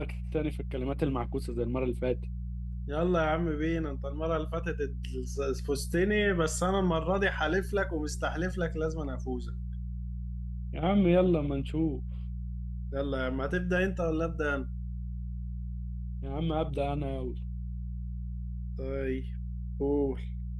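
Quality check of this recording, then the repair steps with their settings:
hum 60 Hz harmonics 3 -36 dBFS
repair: de-hum 60 Hz, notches 3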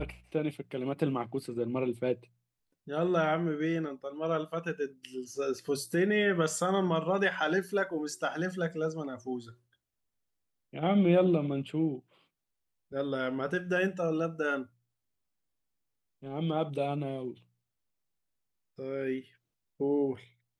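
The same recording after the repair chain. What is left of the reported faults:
nothing left

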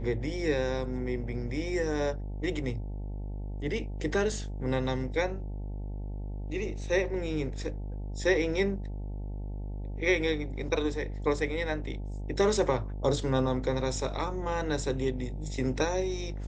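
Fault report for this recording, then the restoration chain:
buzz 50 Hz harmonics 18 -36 dBFS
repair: de-hum 50 Hz, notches 18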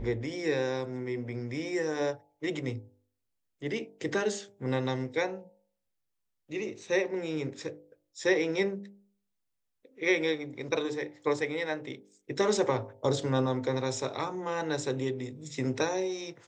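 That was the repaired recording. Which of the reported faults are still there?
nothing left

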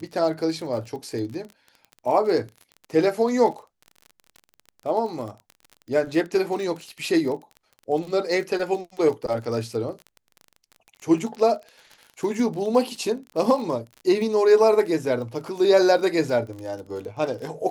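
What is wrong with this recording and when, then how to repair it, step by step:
crackle 33 per s -32 dBFS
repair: de-click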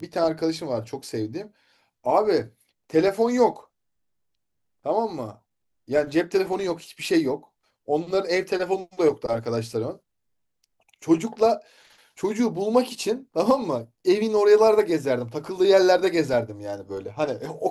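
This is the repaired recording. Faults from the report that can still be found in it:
nothing left

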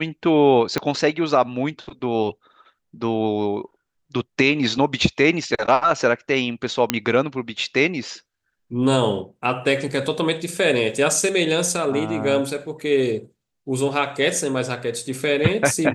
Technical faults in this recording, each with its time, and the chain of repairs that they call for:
0.78 s: pop -8 dBFS
6.90 s: pop -1 dBFS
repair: de-click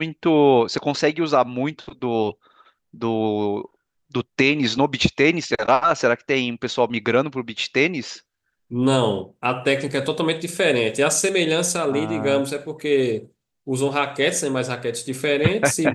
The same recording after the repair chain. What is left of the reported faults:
0.78 s: pop

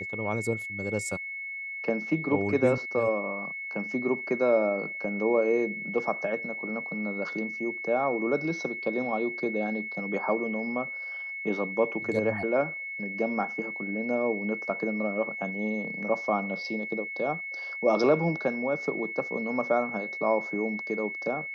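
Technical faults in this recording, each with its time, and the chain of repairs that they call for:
whine 2.2 kHz -34 dBFS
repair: band-stop 2.2 kHz, Q 30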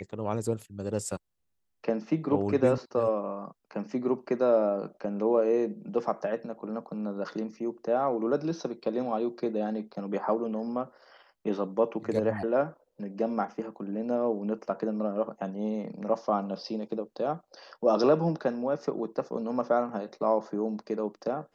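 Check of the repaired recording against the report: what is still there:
nothing left

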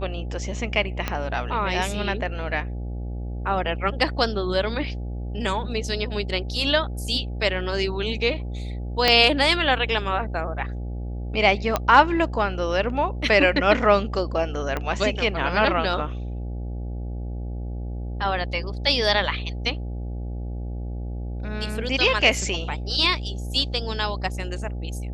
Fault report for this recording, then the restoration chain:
buzz 60 Hz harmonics 14 -30 dBFS
1.08 s: pop -10 dBFS
9.08 s: pop -3 dBFS
11.76 s: pop -7 dBFS
14.77 s: pop -13 dBFS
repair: de-click; de-hum 60 Hz, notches 14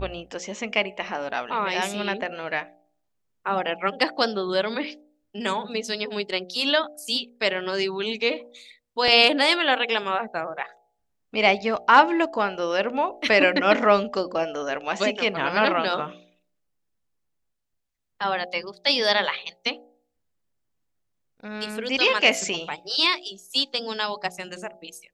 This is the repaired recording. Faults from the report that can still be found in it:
1.08 s: pop
9.08 s: pop
14.77 s: pop

